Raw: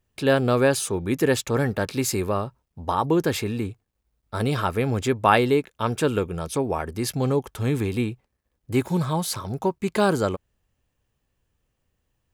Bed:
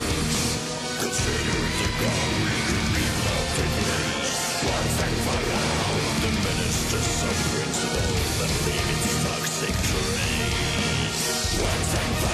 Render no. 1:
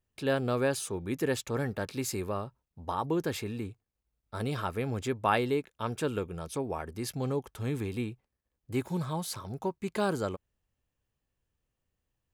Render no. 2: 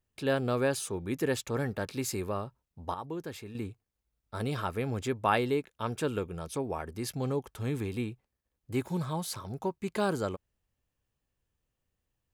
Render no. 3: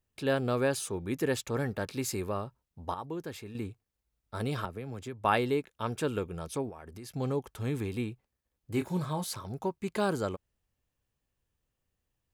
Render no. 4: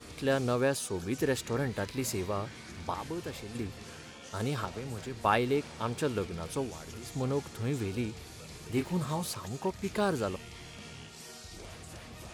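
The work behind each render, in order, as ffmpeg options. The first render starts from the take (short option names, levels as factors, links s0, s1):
-af "volume=0.355"
-filter_complex "[0:a]asplit=3[s0][s1][s2];[s0]atrim=end=2.942[s3];[s1]atrim=start=2.938:end=3.552,asetpts=PTS-STARTPTS,volume=0.398[s4];[s2]atrim=start=3.548[s5];[s3][s4]acrossfade=d=0.004:c1=hsin:c2=hsin[s6];[s6][s5]acrossfade=d=0.004:c1=hsin:c2=hsin"
-filter_complex "[0:a]asettb=1/sr,asplit=3[s0][s1][s2];[s0]atrim=end=4.654[s3];[s1]atrim=start=4.65:end=5.25,asetpts=PTS-STARTPTS,afade=t=in:d=0.004:c=qsin,afade=t=out:st=0.596:d=0.004:c=qsin,acrossover=split=120|670[s4][s5][s6];[s4]acompressor=threshold=0.00398:ratio=4[s7];[s5]acompressor=threshold=0.01:ratio=4[s8];[s6]acompressor=threshold=0.00355:ratio=4[s9];[s7][s8][s9]amix=inputs=3:normalize=0[s10];[s2]atrim=start=5.246[s11];[s3][s10]acrossfade=d=0.004:c1=hsin:c2=qsin[s12];[s12][s11]acrossfade=d=0.004:c1=qsin:c2=hsin,asettb=1/sr,asplit=3[s13][s14][s15];[s13]atrim=end=6.694[s16];[s14]atrim=start=6.69:end=7.15,asetpts=PTS-STARTPTS,afade=t=in:d=0.004:c=qsin,afade=t=out:st=0.456:d=0.004:c=qsin,acompressor=threshold=0.00794:ratio=6:attack=3.2:release=140:knee=1:detection=peak[s17];[s15]atrim=start=7.146[s18];[s16][s17]acrossfade=d=0.004:c1=hsin:c2=qsin[s19];[s19][s18]acrossfade=d=0.004:c1=qsin:c2=hsin,asettb=1/sr,asplit=3[s20][s21][s22];[s20]atrim=end=8.714[s23];[s21]atrim=start=8.71:end=9.24,asetpts=PTS-STARTPTS,afade=t=in:d=0.004:c=qsin,afade=t=out:st=0.526:d=0.004:c=qsin,asplit=2[s24][s25];[s25]adelay=27,volume=0.335[s26];[s24][s26]amix=inputs=2:normalize=0,atrim=end_sample=23373[s27];[s22]atrim=start=9.236[s28];[s23][s27]acrossfade=d=0.004:c1=hsin:c2=qsin[s29];[s29][s28]acrossfade=d=0.004:c1=qsin:c2=hsin"
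-filter_complex "[1:a]volume=0.075[s0];[0:a][s0]amix=inputs=2:normalize=0"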